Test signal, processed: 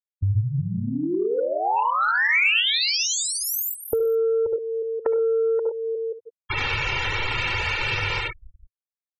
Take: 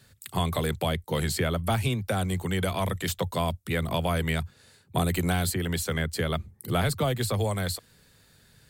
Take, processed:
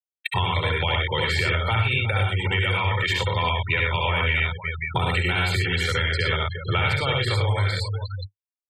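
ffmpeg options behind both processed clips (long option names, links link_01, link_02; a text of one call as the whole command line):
ffmpeg -i in.wav -filter_complex "[0:a]equalizer=frequency=2300:width=0.37:gain=9.5,aecho=1:1:2.2:0.56,asplit=2[link_01][link_02];[link_02]aecho=0:1:63|71|99|121|361|532:0.501|0.708|0.631|0.562|0.224|0.178[link_03];[link_01][link_03]amix=inputs=2:normalize=0,acontrast=40,afftfilt=real='re*gte(hypot(re,im),0.1)':imag='im*gte(hypot(re,im),0.1)':win_size=1024:overlap=0.75,equalizer=frequency=100:width_type=o:width=0.67:gain=11,equalizer=frequency=1000:width_type=o:width=0.67:gain=3,equalizer=frequency=2500:width_type=o:width=0.67:gain=10,equalizer=frequency=10000:width_type=o:width=0.67:gain=-10,acompressor=threshold=-25dB:ratio=3" out.wav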